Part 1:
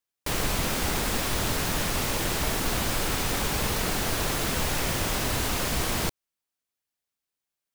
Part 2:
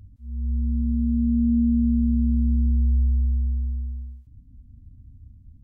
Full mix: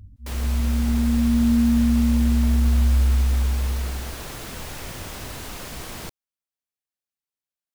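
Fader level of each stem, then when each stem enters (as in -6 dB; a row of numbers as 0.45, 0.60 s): -8.0, +2.0 dB; 0.00, 0.00 s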